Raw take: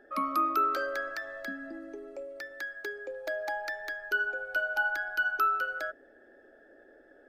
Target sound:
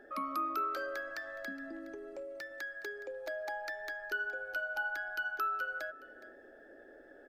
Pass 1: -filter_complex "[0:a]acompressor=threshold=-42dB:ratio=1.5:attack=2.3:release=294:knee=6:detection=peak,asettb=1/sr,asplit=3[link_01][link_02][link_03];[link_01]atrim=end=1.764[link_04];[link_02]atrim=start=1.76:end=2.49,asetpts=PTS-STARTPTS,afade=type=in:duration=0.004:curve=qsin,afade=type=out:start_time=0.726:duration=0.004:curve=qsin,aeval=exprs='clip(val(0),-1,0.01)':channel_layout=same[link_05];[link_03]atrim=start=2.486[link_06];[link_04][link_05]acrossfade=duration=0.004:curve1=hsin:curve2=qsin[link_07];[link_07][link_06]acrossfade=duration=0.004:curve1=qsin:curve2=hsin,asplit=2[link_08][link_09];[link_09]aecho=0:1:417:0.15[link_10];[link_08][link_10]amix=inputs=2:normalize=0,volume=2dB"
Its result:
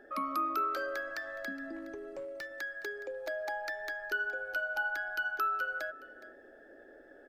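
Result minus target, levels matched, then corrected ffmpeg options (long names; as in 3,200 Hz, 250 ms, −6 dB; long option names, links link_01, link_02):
downward compressor: peak gain reduction −2.5 dB
-filter_complex "[0:a]acompressor=threshold=-49.5dB:ratio=1.5:attack=2.3:release=294:knee=6:detection=peak,asettb=1/sr,asplit=3[link_01][link_02][link_03];[link_01]atrim=end=1.764[link_04];[link_02]atrim=start=1.76:end=2.49,asetpts=PTS-STARTPTS,afade=type=in:duration=0.004:curve=qsin,afade=type=out:start_time=0.726:duration=0.004:curve=qsin,aeval=exprs='clip(val(0),-1,0.01)':channel_layout=same[link_05];[link_03]atrim=start=2.486[link_06];[link_04][link_05]acrossfade=duration=0.004:curve1=hsin:curve2=qsin[link_07];[link_07][link_06]acrossfade=duration=0.004:curve1=qsin:curve2=hsin,asplit=2[link_08][link_09];[link_09]aecho=0:1:417:0.15[link_10];[link_08][link_10]amix=inputs=2:normalize=0,volume=2dB"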